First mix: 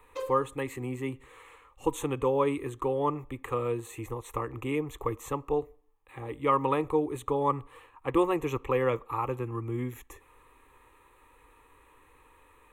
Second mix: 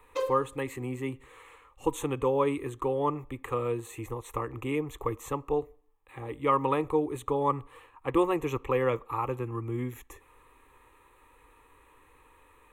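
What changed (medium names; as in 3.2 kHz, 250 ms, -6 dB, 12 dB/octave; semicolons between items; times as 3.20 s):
background +3.5 dB; reverb: on, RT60 2.9 s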